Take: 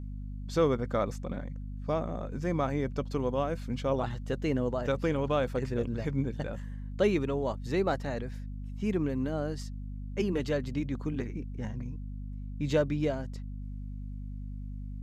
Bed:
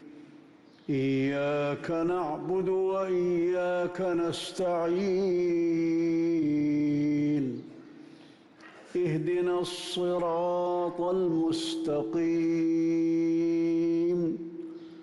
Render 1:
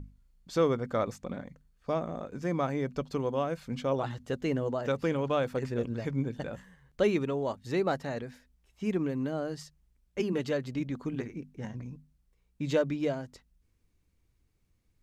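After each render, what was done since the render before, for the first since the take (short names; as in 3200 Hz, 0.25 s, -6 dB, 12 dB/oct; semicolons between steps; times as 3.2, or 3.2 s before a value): notches 50/100/150/200/250 Hz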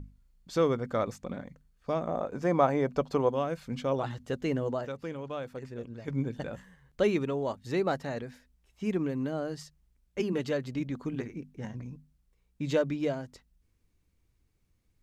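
2.07–3.29 bell 750 Hz +9 dB 1.9 oct; 4.85–6.08 gain -8.5 dB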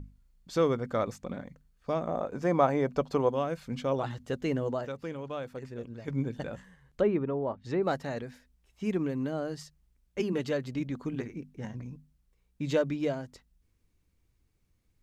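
6.54–7.83 treble ducked by the level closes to 1400 Hz, closed at -27.5 dBFS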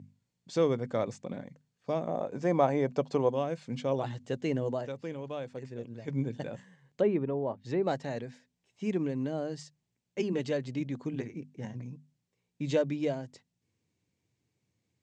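elliptic band-pass 110–7700 Hz; bell 1300 Hz -8 dB 0.55 oct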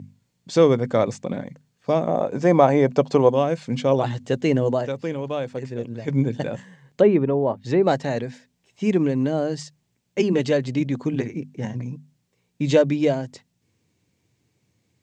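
gain +11 dB; limiter -3 dBFS, peak gain reduction 1.5 dB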